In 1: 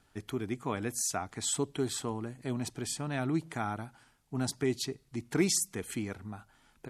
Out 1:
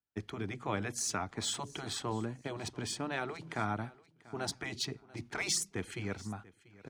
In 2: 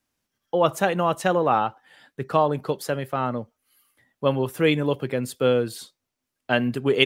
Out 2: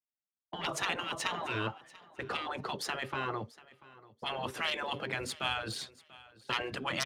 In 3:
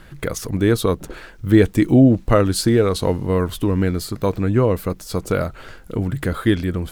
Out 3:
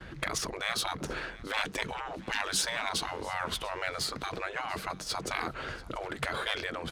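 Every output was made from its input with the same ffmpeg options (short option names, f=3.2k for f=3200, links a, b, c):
-filter_complex "[0:a]aemphasis=mode=reproduction:type=50kf,agate=range=-33dB:threshold=-42dB:ratio=3:detection=peak,bandreject=f=7.6k:w=20,aeval=exprs='0.794*(cos(1*acos(clip(val(0)/0.794,-1,1)))-cos(1*PI/2))+0.0631*(cos(4*acos(clip(val(0)/0.794,-1,1)))-cos(4*PI/2))+0.0355*(cos(5*acos(clip(val(0)/0.794,-1,1)))-cos(5*PI/2))+0.0501*(cos(6*acos(clip(val(0)/0.794,-1,1)))-cos(6*PI/2))+0.0141*(cos(8*acos(clip(val(0)/0.794,-1,1)))-cos(8*PI/2))':c=same,highpass=41,highshelf=f=3.6k:g=8,acrossover=split=120|2000[a][b][c];[a]acompressor=threshold=-37dB:ratio=6[d];[d][b][c]amix=inputs=3:normalize=0,afftfilt=real='re*lt(hypot(re,im),0.158)':imag='im*lt(hypot(re,im),0.158)':win_size=1024:overlap=0.75,adynamicsmooth=sensitivity=5.5:basefreq=7.1k,aecho=1:1:689|1378:0.0891|0.0196"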